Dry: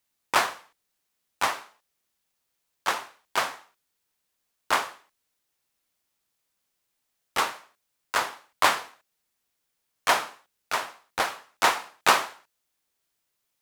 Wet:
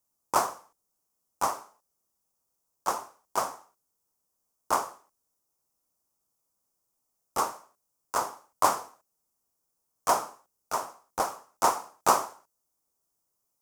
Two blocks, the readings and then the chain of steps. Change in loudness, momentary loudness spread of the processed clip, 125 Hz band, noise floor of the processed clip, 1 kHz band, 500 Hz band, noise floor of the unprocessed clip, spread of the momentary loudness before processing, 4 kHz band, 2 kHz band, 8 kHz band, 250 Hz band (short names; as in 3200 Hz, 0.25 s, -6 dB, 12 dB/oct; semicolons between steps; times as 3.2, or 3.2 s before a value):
-3.0 dB, 13 LU, 0.0 dB, -80 dBFS, -1.0 dB, 0.0 dB, -79 dBFS, 13 LU, -11.0 dB, -12.5 dB, -0.5 dB, 0.0 dB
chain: band shelf 2600 Hz -16 dB